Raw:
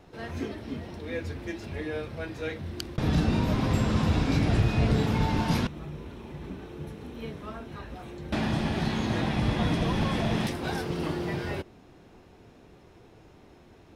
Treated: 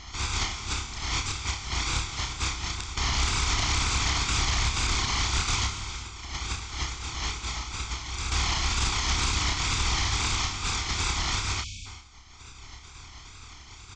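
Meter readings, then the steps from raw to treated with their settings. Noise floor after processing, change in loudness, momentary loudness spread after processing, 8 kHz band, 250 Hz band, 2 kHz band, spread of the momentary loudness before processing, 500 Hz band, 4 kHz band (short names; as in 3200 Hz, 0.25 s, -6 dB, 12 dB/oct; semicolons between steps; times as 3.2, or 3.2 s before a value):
-47 dBFS, +1.0 dB, 20 LU, +18.5 dB, -12.5 dB, +6.0 dB, 16 LU, -11.0 dB, +11.5 dB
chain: spectral contrast lowered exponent 0.1; reverb removal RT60 1.7 s; resonant low shelf 110 Hz +12 dB, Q 1.5; downsampling 16000 Hz; comb 0.9 ms, depth 93%; in parallel at 0 dB: compressor, threshold -41 dBFS, peak gain reduction 22 dB; on the sum: limiter -20.5 dBFS, peak gain reduction 12.5 dB; wow and flutter 120 cents; on a send: flutter echo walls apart 5.2 m, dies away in 0.27 s; on the sum: non-linear reverb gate 0.42 s flat, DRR 7 dB; spectral delete 11.64–11.86, 300–2200 Hz; Doppler distortion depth 0.3 ms; gain +2.5 dB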